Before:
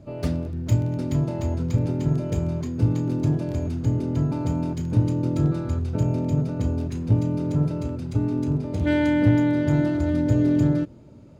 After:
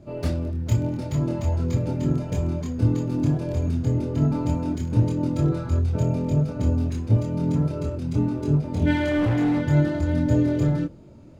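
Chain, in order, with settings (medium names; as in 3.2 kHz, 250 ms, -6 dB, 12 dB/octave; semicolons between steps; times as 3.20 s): chorus voices 6, 0.49 Hz, delay 25 ms, depth 3.2 ms; 8.96–9.62 s: hard clipper -22 dBFS, distortion -19 dB; trim +4 dB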